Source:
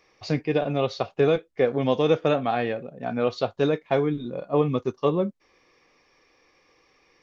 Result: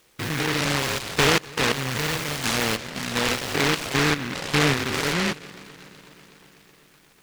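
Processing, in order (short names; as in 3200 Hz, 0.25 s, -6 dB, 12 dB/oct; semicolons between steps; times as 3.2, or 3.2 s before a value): stepped spectrum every 0.2 s; 1.72–2.44 graphic EQ 250/500/1000 Hz -9/-5/-9 dB; multi-head echo 0.124 s, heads second and third, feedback 67%, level -23.5 dB; noise-modulated delay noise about 1700 Hz, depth 0.42 ms; gain +4 dB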